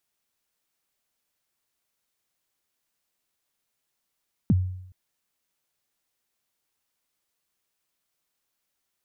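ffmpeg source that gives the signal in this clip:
-f lavfi -i "aevalsrc='0.2*pow(10,-3*t/0.75)*sin(2*PI*(260*0.034/log(92/260)*(exp(log(92/260)*min(t,0.034)/0.034)-1)+92*max(t-0.034,0)))':d=0.42:s=44100"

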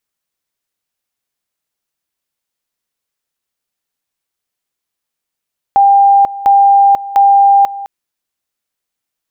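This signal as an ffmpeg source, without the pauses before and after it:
-f lavfi -i "aevalsrc='pow(10,(-4-17*gte(mod(t,0.7),0.49))/20)*sin(2*PI*797*t)':d=2.1:s=44100"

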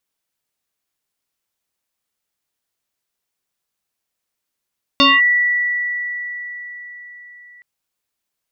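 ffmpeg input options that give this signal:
-f lavfi -i "aevalsrc='0.422*pow(10,-3*t/4.6)*sin(2*PI*1950*t+2.9*clip(1-t/0.21,0,1)*sin(2*PI*0.43*1950*t))':d=2.62:s=44100"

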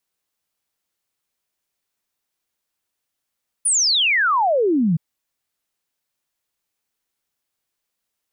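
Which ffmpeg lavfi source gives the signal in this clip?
-f lavfi -i "aevalsrc='0.188*clip(min(t,1.32-t)/0.01,0,1)*sin(2*PI*10000*1.32/log(150/10000)*(exp(log(150/10000)*t/1.32)-1))':d=1.32:s=44100"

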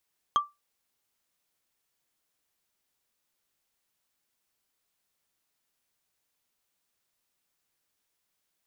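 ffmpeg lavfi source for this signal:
-f lavfi -i "aevalsrc='0.158*pow(10,-3*t/0.2)*sin(2*PI*1170*t)+0.0501*pow(10,-3*t/0.059)*sin(2*PI*3225.7*t)+0.0158*pow(10,-3*t/0.026)*sin(2*PI*6322.7*t)+0.00501*pow(10,-3*t/0.014)*sin(2*PI*10451.6*t)+0.00158*pow(10,-3*t/0.009)*sin(2*PI*15607.8*t)':d=0.45:s=44100"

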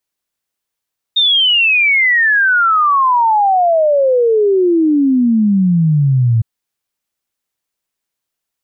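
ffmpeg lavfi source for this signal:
-f lavfi -i "aevalsrc='0.376*clip(min(t,5.26-t)/0.01,0,1)*sin(2*PI*3700*5.26/log(110/3700)*(exp(log(110/3700)*t/5.26)-1))':d=5.26:s=44100"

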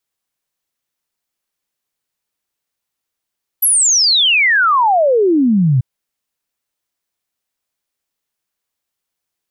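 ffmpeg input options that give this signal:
-f lavfi -i "aevalsrc='0.355*clip(min(t,2.19-t)/0.01,0,1)*sin(2*PI*12000*2.19/log(120/12000)*(exp(log(120/12000)*t/2.19)-1))':d=2.19:s=44100"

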